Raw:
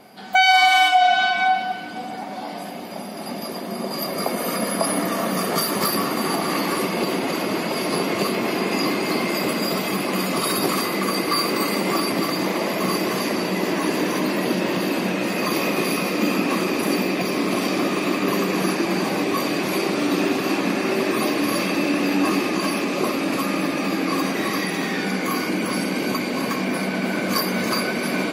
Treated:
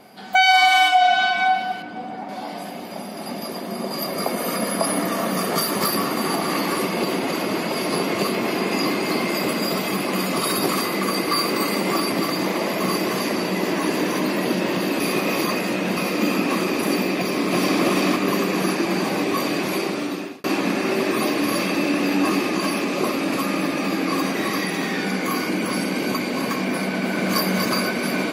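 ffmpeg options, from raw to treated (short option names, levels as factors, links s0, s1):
-filter_complex "[0:a]asettb=1/sr,asplit=3[s0][s1][s2];[s0]atrim=end=1.824[s3];[s1]atrim=start=1.82:end=2.29,asetpts=PTS-STARTPTS,afade=t=in:d=0.004:c=qsin,afade=t=out:st=0.466:d=0.004:c=qsin,lowpass=f=1800:p=1[s4];[s2]atrim=start=2.286[s5];[s3][s4]acrossfade=d=0.004:c1=hsin:c2=qsin[s6];[s6][s5]acrossfade=d=0.004:c1=qsin:c2=hsin,asplit=2[s7][s8];[s8]afade=t=in:st=17.19:d=0.01,afade=t=out:st=17.82:d=0.01,aecho=0:1:340|680|1020|1360:0.944061|0.236015|0.0590038|0.014751[s9];[s7][s9]amix=inputs=2:normalize=0,asplit=2[s10][s11];[s11]afade=t=in:st=26.94:d=0.01,afade=t=out:st=27.41:d=0.01,aecho=0:1:240|480|720|960|1200|1440|1680:0.530884|0.291986|0.160593|0.0883259|0.0485792|0.0267186|0.0146952[s12];[s10][s12]amix=inputs=2:normalize=0,asplit=4[s13][s14][s15][s16];[s13]atrim=end=15.002[s17];[s14]atrim=start=14.998:end=15.972,asetpts=PTS-STARTPTS,areverse[s18];[s15]atrim=start=15.968:end=20.44,asetpts=PTS-STARTPTS,afade=t=out:st=3.492:d=0.98:c=qsin[s19];[s16]atrim=start=20.44,asetpts=PTS-STARTPTS,afade=t=in:d=0.004:c=hsin[s20];[s17][s18]acrossfade=d=0.004:c1=hsin:c2=hsin[s21];[s19][s20]concat=n=2:v=0:a=1[s22];[s21][s22]acrossfade=d=0.004:c1=hsin:c2=hsin"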